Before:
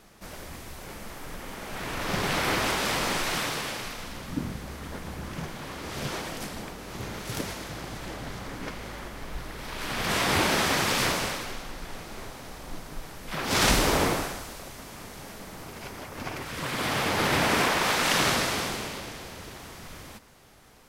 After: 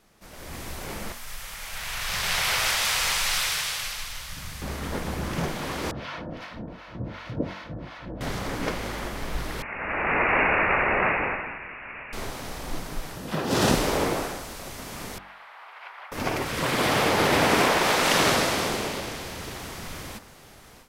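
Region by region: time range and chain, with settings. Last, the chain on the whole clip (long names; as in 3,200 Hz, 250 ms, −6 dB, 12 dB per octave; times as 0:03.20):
0:01.12–0:04.62: guitar amp tone stack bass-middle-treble 10-0-10 + single-tap delay 148 ms −4.5 dB
0:05.91–0:08.21: two-band tremolo in antiphase 2.7 Hz, depth 100%, crossover 700 Hz + high-frequency loss of the air 280 metres + notch comb filter 400 Hz
0:09.62–0:12.13: high-pass filter 690 Hz + voice inversion scrambler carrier 3,100 Hz
0:13.16–0:13.75: high-pass filter 100 Hz + low-shelf EQ 450 Hz +10 dB + notch filter 2,200 Hz, Q 7.8
0:15.18–0:16.12: high-pass filter 870 Hz 24 dB per octave + high-frequency loss of the air 490 metres
whole clip: hum removal 47.62 Hz, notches 38; dynamic equaliser 490 Hz, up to +5 dB, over −42 dBFS, Q 0.73; automatic gain control gain up to 13 dB; level −6.5 dB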